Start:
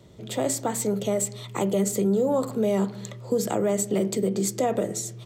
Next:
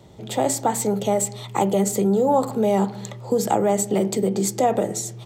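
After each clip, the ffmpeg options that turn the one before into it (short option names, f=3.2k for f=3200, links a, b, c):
-af "equalizer=f=820:t=o:w=0.28:g=11.5,volume=3dB"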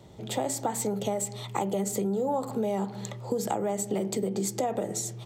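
-af "acompressor=threshold=-23dB:ratio=4,volume=-3dB"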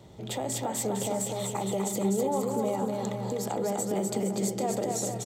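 -af "alimiter=limit=-21.5dB:level=0:latency=1:release=131,aecho=1:1:250|462.5|643.1|796.7|927.2:0.631|0.398|0.251|0.158|0.1"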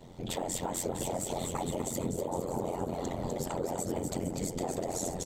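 -af "afftfilt=real='hypot(re,im)*cos(2*PI*random(0))':imag='hypot(re,im)*sin(2*PI*random(1))':win_size=512:overlap=0.75,aeval=exprs='val(0)*sin(2*PI*44*n/s)':c=same,acompressor=threshold=-38dB:ratio=6,volume=8.5dB"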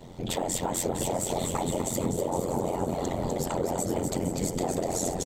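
-af "aecho=1:1:488|976|1464|1952:0.224|0.0918|0.0376|0.0154,volume=5dB"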